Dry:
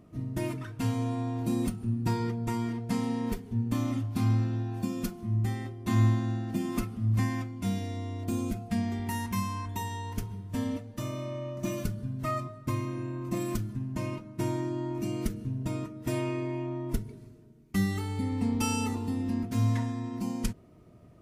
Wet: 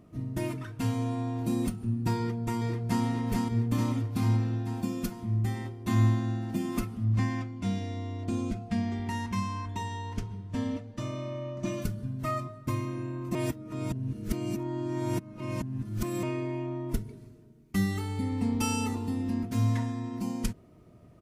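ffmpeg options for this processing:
-filter_complex "[0:a]asplit=2[s0][s1];[s1]afade=t=in:st=2.17:d=0.01,afade=t=out:st=3.04:d=0.01,aecho=0:1:440|880|1320|1760|2200|2640|3080|3520|3960|4400|4840:0.794328|0.516313|0.335604|0.218142|0.141793|0.0921652|0.0599074|0.0389398|0.0253109|0.0164521|0.0106938[s2];[s0][s2]amix=inputs=2:normalize=0,asettb=1/sr,asplit=3[s3][s4][s5];[s3]atrim=end=7.044[s6];[s4]atrim=start=7.04:end=11.82,asetpts=PTS-STARTPTS,afade=t=in:d=0.004:c=qsin,afade=t=out:st=4.776:d=0.004:c=qsin,lowpass=6300[s7];[s5]atrim=start=11.816[s8];[s6][s7]acrossfade=d=0.004:c1=hsin:c2=qsin[s9];[s9][s8]acrossfade=d=0.004:c1=qsin:c2=hsin,asplit=3[s10][s11][s12];[s10]atrim=end=13.352[s13];[s11]atrim=start=13.348:end=16.232,asetpts=PTS-STARTPTS,areverse[s14];[s12]atrim=start=16.228[s15];[s13][s14]acrossfade=d=0.004:c1=hsin:c2=hsin[s16];[s16][s15]acrossfade=d=0.004:c1=hsin:c2=hsin"

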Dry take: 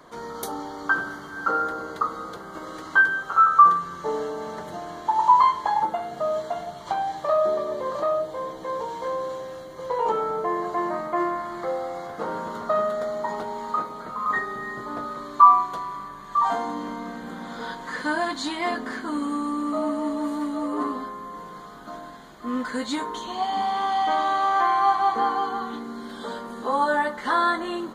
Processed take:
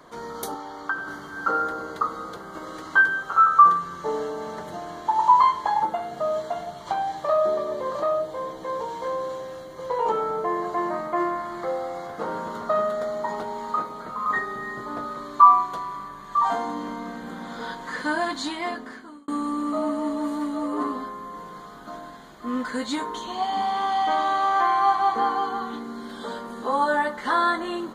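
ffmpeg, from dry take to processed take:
-filter_complex "[0:a]asettb=1/sr,asplit=3[s0][s1][s2];[s0]atrim=end=0.544[s3];[s1]atrim=start=0.54:end=1.08,asetpts=PTS-STARTPTS,afade=t=in:d=0.004:c=qsin,afade=t=out:st=0.536:d=0.004:c=qsin,acrossover=split=560|4000[s4][s5][s6];[s4]acompressor=threshold=0.00708:ratio=4[s7];[s5]acompressor=threshold=0.0562:ratio=4[s8];[s6]acompressor=threshold=0.00112:ratio=4[s9];[s7][s8][s9]amix=inputs=3:normalize=0[s10];[s2]atrim=start=1.076[s11];[s3][s10]acrossfade=d=0.004:c1=hsin:c2=qsin[s12];[s12][s11]acrossfade=d=0.004:c1=qsin:c2=hsin,asplit=2[s13][s14];[s13]atrim=end=19.28,asetpts=PTS-STARTPTS,afade=t=out:st=18.4:d=0.88[s15];[s14]atrim=start=19.28,asetpts=PTS-STARTPTS,afade=t=in:d=0.004:c=hsin[s16];[s15][s16]concat=n=2:v=0:a=1"

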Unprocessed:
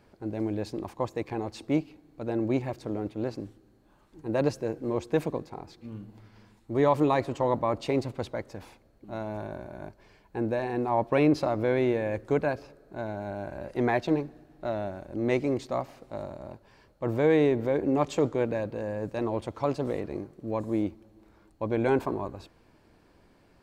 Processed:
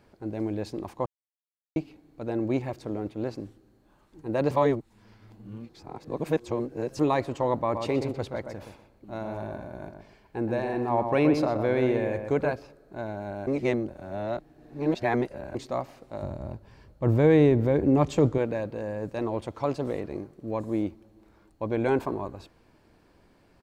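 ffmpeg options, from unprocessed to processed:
-filter_complex "[0:a]asplit=3[s0][s1][s2];[s0]afade=t=out:st=7.73:d=0.02[s3];[s1]asplit=2[s4][s5];[s5]adelay=124,lowpass=f=2200:p=1,volume=0.501,asplit=2[s6][s7];[s7]adelay=124,lowpass=f=2200:p=1,volume=0.28,asplit=2[s8][s9];[s9]adelay=124,lowpass=f=2200:p=1,volume=0.28,asplit=2[s10][s11];[s11]adelay=124,lowpass=f=2200:p=1,volume=0.28[s12];[s4][s6][s8][s10][s12]amix=inputs=5:normalize=0,afade=t=in:st=7.73:d=0.02,afade=t=out:st=12.54:d=0.02[s13];[s2]afade=t=in:st=12.54:d=0.02[s14];[s3][s13][s14]amix=inputs=3:normalize=0,asettb=1/sr,asplit=3[s15][s16][s17];[s15]atrim=end=16.224[s18];[s16]atrim=start=16.22:end=18.38,asetpts=PTS-STARTPTS,afade=t=in:d=0.004:c=qsin,afade=t=out:st=2.156:d=0.004:c=qsin,equalizer=f=67:w=0.37:g=13[s19];[s17]atrim=start=18.376[s20];[s18][s19]acrossfade=d=0.004:c1=hsin:c2=qsin[s21];[s21][s20]acrossfade=d=0.004:c1=qsin:c2=hsin,asplit=7[s22][s23][s24][s25][s26][s27][s28];[s22]atrim=end=1.06,asetpts=PTS-STARTPTS,afade=t=out:st=1.056:d=0.004:c=hsin[s29];[s23]atrim=start=1.06:end=1.76,asetpts=PTS-STARTPTS,volume=0[s30];[s24]atrim=start=1.76:end=4.512,asetpts=PTS-STARTPTS,afade=t=in:d=0.004:c=hsin[s31];[s25]atrim=start=4.508:end=6.992,asetpts=PTS-STARTPTS,areverse[s32];[s26]atrim=start=6.988:end=13.472[s33];[s27]atrim=start=13.468:end=15.552,asetpts=PTS-STARTPTS,areverse[s34];[s28]atrim=start=15.548[s35];[s29][s30][s31]concat=n=3:v=0:a=1[s36];[s36][s32]acrossfade=d=0.004:c1=hsin:c2=hsin[s37];[s37][s33]acrossfade=d=0.004:c1=hsin:c2=hsin[s38];[s38][s34]acrossfade=d=0.004:c1=hsin:c2=hsin[s39];[s39][s35]acrossfade=d=0.004:c1=hsin:c2=hsin"

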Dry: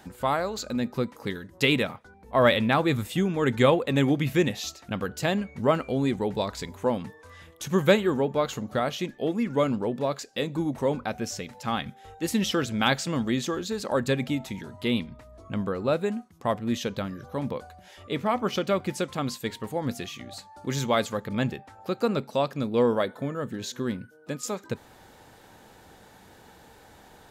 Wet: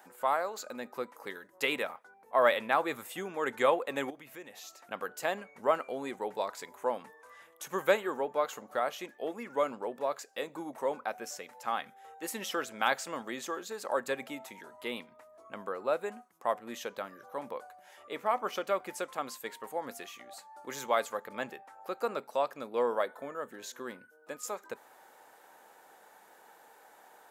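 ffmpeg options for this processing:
-filter_complex "[0:a]asettb=1/sr,asplit=3[s0][s1][s2];[s0]atrim=end=4.104[s3];[s1]atrim=start=4.1:end=4.78,asetpts=PTS-STARTPTS,afade=t=in:d=0.004:c=qsin,afade=t=out:st=0.676:d=0.004:c=qsin,acompressor=threshold=0.0141:ratio=3:attack=3.2:release=140:knee=1:detection=peak[s4];[s2]atrim=start=4.776[s5];[s3][s4]acrossfade=d=0.004:c1=hsin:c2=qsin[s6];[s6][s5]acrossfade=d=0.004:c1=qsin:c2=hsin,highpass=660,equalizer=f=4000:t=o:w=1.8:g=-11"

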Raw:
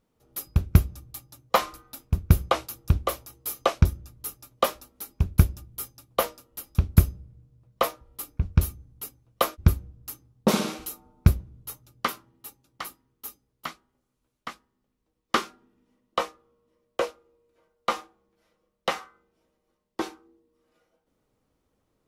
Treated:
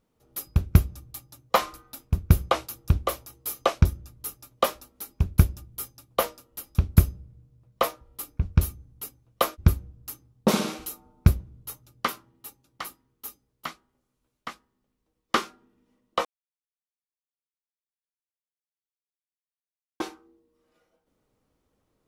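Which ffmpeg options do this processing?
-filter_complex "[0:a]asplit=3[s0][s1][s2];[s0]atrim=end=16.25,asetpts=PTS-STARTPTS,afade=t=out:st=16.246:d=0.004:c=hsin[s3];[s1]atrim=start=16.25:end=20,asetpts=PTS-STARTPTS,volume=0[s4];[s2]atrim=start=20,asetpts=PTS-STARTPTS,afade=t=in:d=0.004:c=hsin[s5];[s3][s4][s5]concat=n=3:v=0:a=1"

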